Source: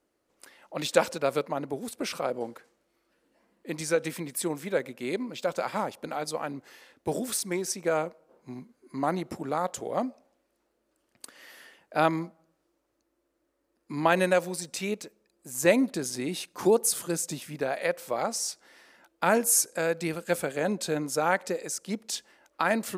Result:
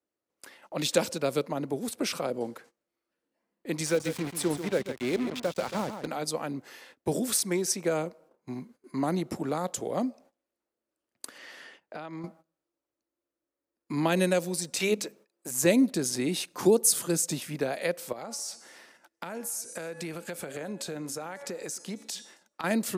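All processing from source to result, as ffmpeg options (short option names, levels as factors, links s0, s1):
-filter_complex "[0:a]asettb=1/sr,asplit=3[s0][s1][s2];[s0]atrim=end=3.864[s3];[s1]atrim=start=3.86:end=6.07,asetpts=PTS-STARTPTS,afade=t=in:d=0.004:c=qsin,afade=t=out:st=2.206:d=0.004:c=qsin,acrusher=bits=5:mix=0:aa=0.5,highshelf=f=8000:g=-9,aecho=1:1:139:0.299,atrim=end_sample=97461[s4];[s2]atrim=start=6.066[s5];[s3][s4]acrossfade=d=0.004:c1=hsin:c2=qsin[s6];[s6][s5]acrossfade=d=0.004:c1=qsin:c2=hsin,asettb=1/sr,asplit=3[s7][s8][s9];[s7]atrim=end=11.384[s10];[s8]atrim=start=11.38:end=12.24,asetpts=PTS-STARTPTS,afade=t=in:d=0.004:c=qsin,afade=t=out:st=0.856:d=0.004:c=qsin,lowpass=6900,acompressor=threshold=0.0112:ratio=6:attack=3.2:release=140:knee=1:detection=peak[s11];[s9]atrim=start=12.236[s12];[s10][s11]acrossfade=d=0.004:c1=hsin:c2=qsin[s13];[s13][s12]acrossfade=d=0.004:c1=qsin:c2=hsin,asettb=1/sr,asplit=3[s14][s15][s16];[s14]atrim=end=14.804[s17];[s15]atrim=start=14.8:end=15.51,asetpts=PTS-STARTPTS,afade=t=in:d=0.004:c=qsin,afade=t=out:st=0.706:d=0.004:c=qsin,bandreject=f=50:t=h:w=6,bandreject=f=100:t=h:w=6,bandreject=f=150:t=h:w=6,bandreject=f=200:t=h:w=6,bandreject=f=250:t=h:w=6,acontrast=61,bass=f=250:g=-10,treble=f=4000:g=-2[s18];[s16]atrim=start=15.506[s19];[s17][s18]acrossfade=d=0.004:c1=hsin:c2=qsin[s20];[s20][s19]acrossfade=d=0.004:c1=qsin:c2=hsin,asettb=1/sr,asplit=3[s21][s22][s23];[s21]atrim=end=18.124[s24];[s22]atrim=start=18.12:end=22.64,asetpts=PTS-STARTPTS,afade=t=in:d=0.004:c=qsin,afade=t=out:st=4.516:d=0.004:c=qsin,bandreject=f=283.3:t=h:w=4,bandreject=f=566.6:t=h:w=4,bandreject=f=849.9:t=h:w=4,bandreject=f=1133.2:t=h:w=4,bandreject=f=1416.5:t=h:w=4,bandreject=f=1699.8:t=h:w=4,bandreject=f=1983.1:t=h:w=4,bandreject=f=2266.4:t=h:w=4,bandreject=f=2549.7:t=h:w=4,bandreject=f=2833:t=h:w=4,bandreject=f=3116.3:t=h:w=4,bandreject=f=3399.6:t=h:w=4,bandreject=f=3682.9:t=h:w=4,bandreject=f=3966.2:t=h:w=4,bandreject=f=4249.5:t=h:w=4,bandreject=f=4532.8:t=h:w=4,bandreject=f=4816.1:t=h:w=4,bandreject=f=5099.4:t=h:w=4,bandreject=f=5382.7:t=h:w=4,bandreject=f=5666:t=h:w=4,bandreject=f=5949.3:t=h:w=4,bandreject=f=6232.6:t=h:w=4,bandreject=f=6515.9:t=h:w=4,bandreject=f=6799.2:t=h:w=4,bandreject=f=7082.5:t=h:w=4,bandreject=f=7365.8:t=h:w=4,bandreject=f=7649.1:t=h:w=4,bandreject=f=7932.4:t=h:w=4,bandreject=f=8215.7:t=h:w=4,bandreject=f=8499:t=h:w=4,bandreject=f=8782.3:t=h:w=4,bandreject=f=9065.6:t=h:w=4,bandreject=f=9348.9:t=h:w=4,bandreject=f=9632.2:t=h:w=4,bandreject=f=9915.5:t=h:w=4,bandreject=f=10198.8:t=h:w=4,bandreject=f=10482.1:t=h:w=4,bandreject=f=10765.4:t=h:w=4,bandreject=f=11048.7:t=h:w=4,acompressor=threshold=0.0158:ratio=6:attack=3.2:release=140:knee=1:detection=peak,aecho=1:1:269|538|807:0.0668|0.0261|0.0102,atrim=end_sample=199332[s25];[s23]atrim=start=22.636[s26];[s24][s25]acrossfade=d=0.004:c1=hsin:c2=qsin[s27];[s27][s26]acrossfade=d=0.004:c1=qsin:c2=hsin,highpass=70,agate=range=0.141:threshold=0.00158:ratio=16:detection=peak,acrossover=split=430|3000[s28][s29][s30];[s29]acompressor=threshold=0.00794:ratio=2[s31];[s28][s31][s30]amix=inputs=3:normalize=0,volume=1.5"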